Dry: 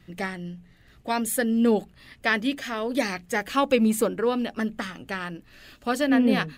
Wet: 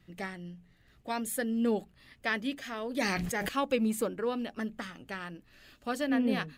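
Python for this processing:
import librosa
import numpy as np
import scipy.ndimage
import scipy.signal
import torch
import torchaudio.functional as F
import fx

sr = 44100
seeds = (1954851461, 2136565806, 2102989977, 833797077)

y = fx.sustainer(x, sr, db_per_s=20.0, at=(2.92, 3.49))
y = F.gain(torch.from_numpy(y), -8.0).numpy()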